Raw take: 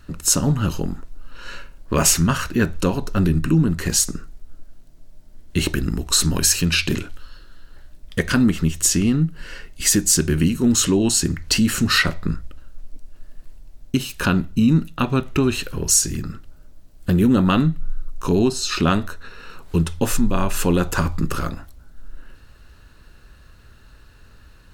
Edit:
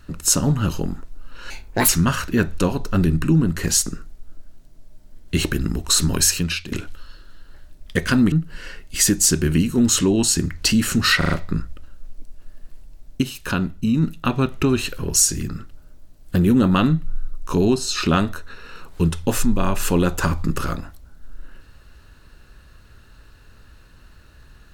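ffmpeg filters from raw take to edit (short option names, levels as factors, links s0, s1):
-filter_complex "[0:a]asplit=10[s0][s1][s2][s3][s4][s5][s6][s7][s8][s9];[s0]atrim=end=1.504[s10];[s1]atrim=start=1.5:end=2.11,asetpts=PTS-STARTPTS,asetrate=69237,aresample=44100,atrim=end_sample=17134,asetpts=PTS-STARTPTS[s11];[s2]atrim=start=2.106:end=6.94,asetpts=PTS-STARTPTS,afade=t=out:st=4.394:d=0.44:silence=0.133352[s12];[s3]atrim=start=6.94:end=8.542,asetpts=PTS-STARTPTS,afade=t=in:d=0.004:c=hsin:silence=0.133352[s13];[s4]atrim=start=9.178:end=12.082[s14];[s5]atrim=start=12.038:end=12.082[s15];[s6]atrim=start=12.038:end=12.082[s16];[s7]atrim=start=12.038:end=13.962[s17];[s8]atrim=start=13.958:end=14.772,asetpts=PTS-STARTPTS,volume=0.668[s18];[s9]atrim=start=14.768[s19];[s10][s11]acrossfade=d=0.004:c1=hsin:c2=hsin[s20];[s12][s13]concat=n=2:v=0:a=1[s21];[s20][s21]acrossfade=d=0.004:c1=hsin:c2=hsin[s22];[s22][s14]acrossfade=d=0.004:c1=hsin:c2=hsin[s23];[s23][s15]acrossfade=d=0.004:c1=hsin:c2=hsin[s24];[s24][s16]acrossfade=d=0.004:c1=hsin:c2=hsin[s25];[s25][s17]acrossfade=d=0.004:c1=hsin:c2=hsin[s26];[s26][s18]acrossfade=d=0.004:c1=hsin:c2=hsin[s27];[s27][s19]acrossfade=d=0.004:c1=hsin:c2=hsin"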